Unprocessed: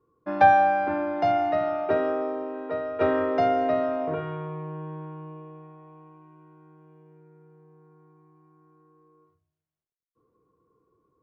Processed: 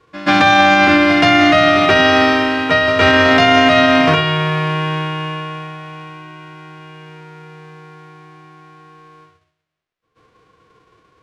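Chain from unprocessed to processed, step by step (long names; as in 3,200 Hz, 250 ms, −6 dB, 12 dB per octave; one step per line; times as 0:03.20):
spectral envelope flattened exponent 0.3
low-pass filter 2,900 Hz 12 dB per octave
notch filter 890 Hz, Q 12
echo ahead of the sound 130 ms −16.5 dB
boost into a limiter +18.5 dB
level −1 dB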